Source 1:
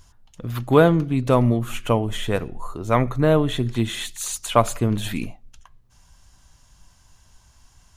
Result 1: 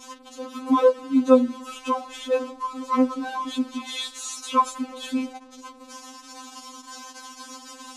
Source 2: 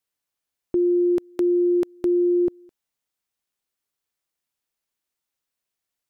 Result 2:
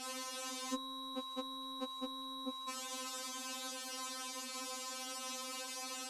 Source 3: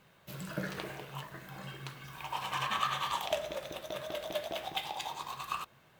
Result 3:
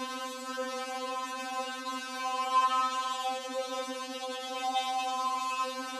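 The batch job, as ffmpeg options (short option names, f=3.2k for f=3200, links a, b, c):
-af "aeval=exprs='val(0)+0.5*0.0596*sgn(val(0))':c=same,highpass=100,equalizer=f=310:t=q:w=4:g=9,equalizer=f=500:t=q:w=4:g=4,equalizer=f=1.1k:t=q:w=4:g=9,equalizer=f=1.9k:t=q:w=4:g=-7,equalizer=f=9.1k:t=q:w=4:g=-6,lowpass=f=9.8k:w=0.5412,lowpass=f=9.8k:w=1.3066,afftfilt=real='re*3.46*eq(mod(b,12),0)':imag='im*3.46*eq(mod(b,12),0)':win_size=2048:overlap=0.75,volume=-5dB"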